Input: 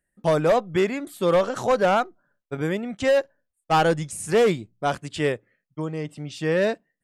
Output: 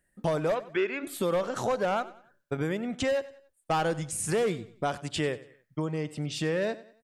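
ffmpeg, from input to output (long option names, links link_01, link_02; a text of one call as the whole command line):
ffmpeg -i in.wav -filter_complex "[0:a]acompressor=threshold=-35dB:ratio=3,asplit=3[link_01][link_02][link_03];[link_01]afade=type=out:start_time=0.54:duration=0.02[link_04];[link_02]highpass=370,equalizer=frequency=380:width_type=q:width=4:gain=5,equalizer=frequency=730:width_type=q:width=4:gain=-8,equalizer=frequency=1500:width_type=q:width=4:gain=8,equalizer=frequency=2500:width_type=q:width=4:gain=7,equalizer=frequency=4500:width_type=q:width=4:gain=-5,lowpass=frequency=5000:width=0.5412,lowpass=frequency=5000:width=1.3066,afade=type=in:start_time=0.54:duration=0.02,afade=type=out:start_time=1.02:duration=0.02[link_05];[link_03]afade=type=in:start_time=1.02:duration=0.02[link_06];[link_04][link_05][link_06]amix=inputs=3:normalize=0,aecho=1:1:94|188|282:0.133|0.0493|0.0183,volume=5dB" out.wav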